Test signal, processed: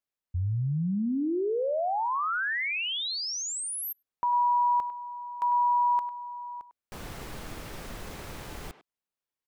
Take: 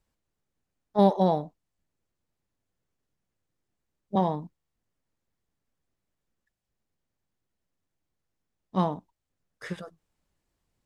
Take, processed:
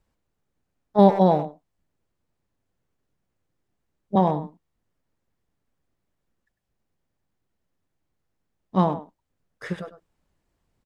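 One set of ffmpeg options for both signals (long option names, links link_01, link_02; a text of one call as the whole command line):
ffmpeg -i in.wav -filter_complex "[0:a]highshelf=frequency=2700:gain=-6.5,asplit=2[link_01][link_02];[link_02]adelay=100,highpass=300,lowpass=3400,asoftclip=type=hard:threshold=-17dB,volume=-12dB[link_03];[link_01][link_03]amix=inputs=2:normalize=0,volume=5.5dB" out.wav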